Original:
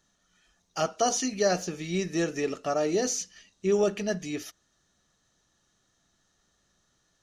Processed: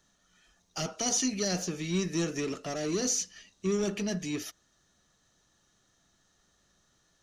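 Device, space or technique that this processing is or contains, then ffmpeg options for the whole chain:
one-band saturation: -filter_complex "[0:a]acrossover=split=300|2700[link_01][link_02][link_03];[link_02]asoftclip=type=tanh:threshold=-38dB[link_04];[link_01][link_04][link_03]amix=inputs=3:normalize=0,volume=1.5dB"

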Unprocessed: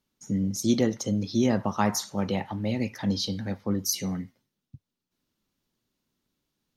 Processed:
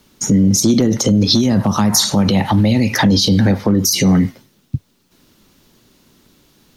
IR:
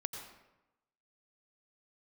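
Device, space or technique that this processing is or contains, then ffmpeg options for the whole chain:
mastering chain: -filter_complex "[0:a]equalizer=frequency=390:width_type=o:width=0.77:gain=2,acrossover=split=340|7300[link_01][link_02][link_03];[link_01]acompressor=threshold=-23dB:ratio=4[link_04];[link_02]acompressor=threshold=-36dB:ratio=4[link_05];[link_03]acompressor=threshold=-44dB:ratio=4[link_06];[link_04][link_05][link_06]amix=inputs=3:normalize=0,acompressor=threshold=-31dB:ratio=2,asoftclip=type=hard:threshold=-23dB,alimiter=level_in=31dB:limit=-1dB:release=50:level=0:latency=1,asettb=1/sr,asplit=3[link_07][link_08][link_09];[link_07]atrim=end=1.304[link_10];[link_08]atrim=start=1.3:end=2.95,asetpts=PTS-STARTPTS,afade=type=in:duration=0.004:curve=qsin,afade=type=out:start_time=1.646:duration=0.004:curve=qsin,equalizer=frequency=400:width_type=o:width=0.67:gain=-5,equalizer=frequency=4000:width_type=o:width=0.67:gain=6,equalizer=frequency=10000:width_type=o:width=0.67:gain=5[link_11];[link_09]atrim=start=2.946[link_12];[link_10][link_11]acrossfade=duration=0.004:curve1=hsin:curve2=qsin[link_13];[link_13][link_12]acrossfade=duration=0.004:curve1=qsin:curve2=hsin,volume=-4.5dB"

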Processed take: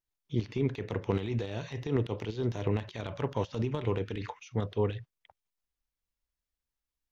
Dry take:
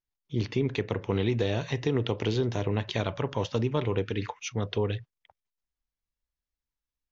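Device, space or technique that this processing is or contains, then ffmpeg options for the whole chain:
de-esser from a sidechain: -filter_complex "[0:a]asplit=2[link_01][link_02];[link_02]highpass=5100,apad=whole_len=313735[link_03];[link_01][link_03]sidechaincompress=threshold=-54dB:ratio=6:attack=1.9:release=45"

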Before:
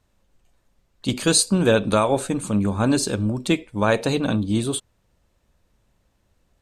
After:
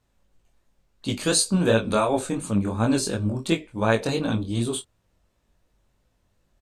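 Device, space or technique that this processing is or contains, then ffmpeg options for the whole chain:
double-tracked vocal: -filter_complex "[0:a]asplit=2[link_01][link_02];[link_02]adelay=26,volume=-13dB[link_03];[link_01][link_03]amix=inputs=2:normalize=0,flanger=delay=17.5:depth=5.8:speed=2.8"

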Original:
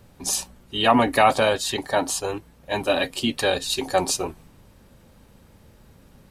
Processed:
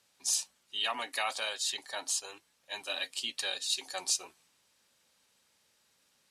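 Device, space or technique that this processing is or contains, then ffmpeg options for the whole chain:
piezo pickup straight into a mixer: -filter_complex "[0:a]lowpass=6500,aderivative,asettb=1/sr,asplit=3[link_01][link_02][link_03];[link_01]atrim=end=0.794[link_04];[link_02]atrim=start=0.79:end=1.64,asetpts=PTS-STARTPTS,afade=type=in:duration=0.004:curve=qsin,afade=type=out:start_time=0.846:duration=0.004:curve=qsin,highpass=frequency=250:poles=1[link_05];[link_03]atrim=start=1.636[link_06];[link_04][link_05]acrossfade=duration=0.004:curve1=hsin:curve2=qsin[link_07];[link_07][link_06]acrossfade=duration=0.004:curve1=qsin:curve2=hsin"

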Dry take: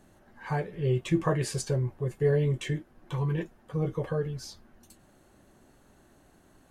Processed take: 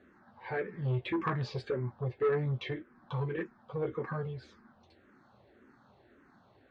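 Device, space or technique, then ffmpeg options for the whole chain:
barber-pole phaser into a guitar amplifier: -filter_complex "[0:a]asplit=2[link_01][link_02];[link_02]afreqshift=-1.8[link_03];[link_01][link_03]amix=inputs=2:normalize=1,asoftclip=type=tanh:threshold=-26dB,highpass=110,equalizer=frequency=160:width_type=q:width=4:gain=-7,equalizer=frequency=320:width_type=q:width=4:gain=-4,equalizer=frequency=650:width_type=q:width=4:gain=-4,equalizer=frequency=1300:width_type=q:width=4:gain=3,equalizer=frequency=2900:width_type=q:width=4:gain=-8,lowpass=frequency=3800:width=0.5412,lowpass=frequency=3800:width=1.3066,volume=3.5dB"

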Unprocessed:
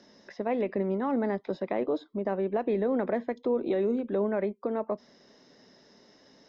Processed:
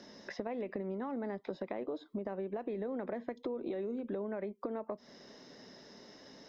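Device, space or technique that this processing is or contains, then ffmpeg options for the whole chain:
serial compression, leveller first: -af "acompressor=threshold=-31dB:ratio=2.5,acompressor=threshold=-40dB:ratio=4,volume=3.5dB"

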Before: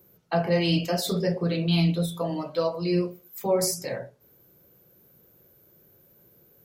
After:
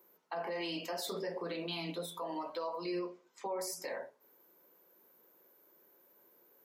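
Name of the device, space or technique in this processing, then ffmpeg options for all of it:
laptop speaker: -filter_complex "[0:a]highpass=frequency=260:width=0.5412,highpass=frequency=260:width=1.3066,equalizer=frequency=980:width_type=o:width=0.54:gain=11,equalizer=frequency=1900:width_type=o:width=0.57:gain=4.5,alimiter=limit=-23dB:level=0:latency=1:release=105,asettb=1/sr,asplit=3[link_01][link_02][link_03];[link_01]atrim=end=2.994[link_04];[link_02]atrim=start=2.99:end=3.6,asetpts=PTS-STARTPTS,afade=type=in:duration=0.004:curve=qsin,afade=type=out:start_time=0.606:duration=0.004:curve=qsin,lowpass=frequency=6700:width=0.5412,lowpass=frequency=6700:width=1.3066[link_05];[link_03]atrim=start=3.596[link_06];[link_04][link_05]acrossfade=duration=0.004:curve1=hsin:curve2=qsin[link_07];[link_07][link_06]acrossfade=duration=0.004:curve1=qsin:curve2=hsin,volume=-7dB"

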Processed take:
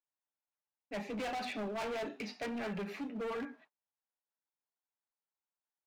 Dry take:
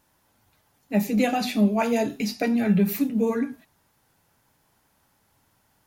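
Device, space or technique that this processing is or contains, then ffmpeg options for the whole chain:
walkie-talkie: -af "highpass=460,lowpass=2500,asoftclip=type=hard:threshold=-32.5dB,agate=range=-30dB:threshold=-58dB:ratio=16:detection=peak,volume=-3.5dB"

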